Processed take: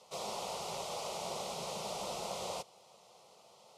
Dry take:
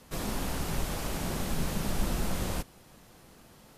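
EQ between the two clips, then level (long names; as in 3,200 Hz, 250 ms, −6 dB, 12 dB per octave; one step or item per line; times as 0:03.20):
band-pass filter 350–6,300 Hz
phaser with its sweep stopped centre 690 Hz, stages 4
+1.5 dB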